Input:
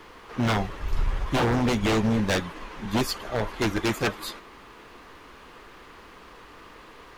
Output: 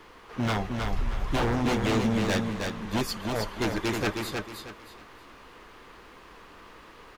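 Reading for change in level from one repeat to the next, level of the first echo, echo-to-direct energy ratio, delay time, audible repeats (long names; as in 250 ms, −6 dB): −11.0 dB, −4.5 dB, −4.0 dB, 315 ms, 3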